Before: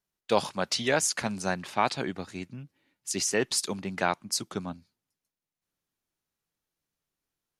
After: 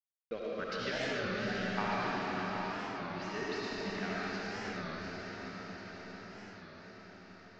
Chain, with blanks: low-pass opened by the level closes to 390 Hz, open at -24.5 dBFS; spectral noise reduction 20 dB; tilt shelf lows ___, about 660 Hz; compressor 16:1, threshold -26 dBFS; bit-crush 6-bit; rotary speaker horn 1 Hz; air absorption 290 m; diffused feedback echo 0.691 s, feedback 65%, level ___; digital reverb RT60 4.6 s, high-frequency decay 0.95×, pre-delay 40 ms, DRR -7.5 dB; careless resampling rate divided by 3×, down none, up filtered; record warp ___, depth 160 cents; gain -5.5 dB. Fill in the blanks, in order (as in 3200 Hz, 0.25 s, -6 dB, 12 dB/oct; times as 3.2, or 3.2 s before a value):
-3 dB, -6 dB, 33 1/3 rpm